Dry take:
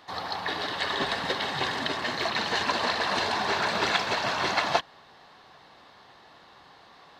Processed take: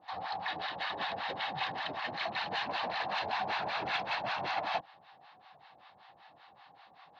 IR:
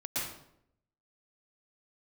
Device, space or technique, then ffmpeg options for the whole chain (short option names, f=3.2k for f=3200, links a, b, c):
guitar amplifier with harmonic tremolo: -filter_complex "[0:a]acrossover=split=740[a][b];[a]aeval=exprs='val(0)*(1-1/2+1/2*cos(2*PI*5.2*n/s))':c=same[c];[b]aeval=exprs='val(0)*(1-1/2-1/2*cos(2*PI*5.2*n/s))':c=same[d];[c][d]amix=inputs=2:normalize=0,asoftclip=type=tanh:threshold=-26.5dB,highpass=97,equalizer=f=250:t=q:w=4:g=-6,equalizer=f=400:t=q:w=4:g=-9,equalizer=f=780:t=q:w=4:g=9,equalizer=f=2.5k:t=q:w=4:g=4,lowpass=f=4.3k:w=0.5412,lowpass=f=4.3k:w=1.3066,volume=-2.5dB"